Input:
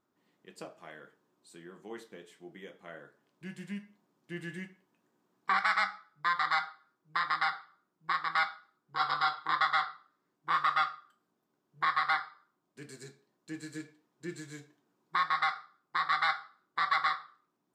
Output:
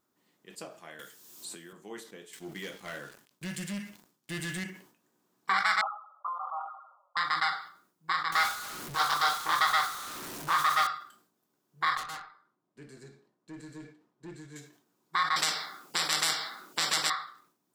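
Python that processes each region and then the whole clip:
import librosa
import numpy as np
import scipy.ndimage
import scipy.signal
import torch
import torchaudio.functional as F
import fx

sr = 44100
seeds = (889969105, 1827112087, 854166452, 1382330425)

y = fx.chain(x, sr, fx.high_shelf(hz=3500.0, db=9.5),
    fx.band_squash(depth_pct=100), at=(0.99, 1.73))
y = fx.chain(y, sr, fx.peak_eq(hz=520.0, db=-5.5, octaves=2.9),
    fx.leveller(passes=3), at=(2.33, 4.64))
y = fx.chain(y, sr, fx.env_flanger(rest_ms=6.9, full_db=-27.0),
    fx.brickwall_bandpass(low_hz=520.0, high_hz=1400.0),
    fx.sustainer(db_per_s=74.0), at=(5.81, 7.17))
y = fx.chain(y, sr, fx.zero_step(step_db=-37.0),
    fx.doppler_dist(depth_ms=0.32), at=(8.32, 10.87))
y = fx.chain(y, sr, fx.lowpass(hz=1200.0, slope=6),
    fx.tube_stage(drive_db=39.0, bias=0.25), at=(11.97, 14.56))
y = fx.chain(y, sr, fx.highpass(hz=200.0, slope=12),
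    fx.spectral_comp(ratio=4.0), at=(15.36, 17.1))
y = fx.high_shelf(y, sr, hz=4500.0, db=11.5)
y = fx.sustainer(y, sr, db_per_s=110.0)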